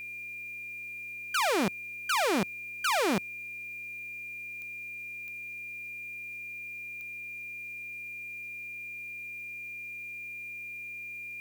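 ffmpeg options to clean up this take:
-af "adeclick=t=4,bandreject=f=114.7:t=h:w=4,bandreject=f=229.4:t=h:w=4,bandreject=f=344.1:t=h:w=4,bandreject=f=458.8:t=h:w=4,bandreject=f=2400:w=30,agate=range=0.0891:threshold=0.0224"

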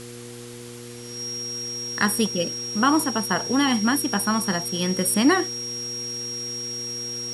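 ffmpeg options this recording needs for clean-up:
-af "adeclick=t=4,bandreject=f=119.9:t=h:w=4,bandreject=f=239.8:t=h:w=4,bandreject=f=359.7:t=h:w=4,bandreject=f=479.6:t=h:w=4,bandreject=f=5600:w=30,afftdn=nr=30:nf=-38"

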